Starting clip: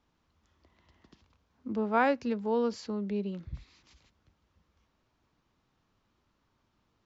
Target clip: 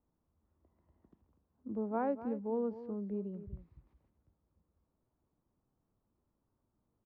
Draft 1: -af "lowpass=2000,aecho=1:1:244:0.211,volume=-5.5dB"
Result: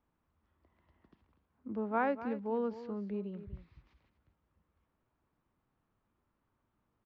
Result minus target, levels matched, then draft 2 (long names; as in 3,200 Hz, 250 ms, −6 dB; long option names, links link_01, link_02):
2,000 Hz band +10.5 dB
-af "lowpass=740,aecho=1:1:244:0.211,volume=-5.5dB"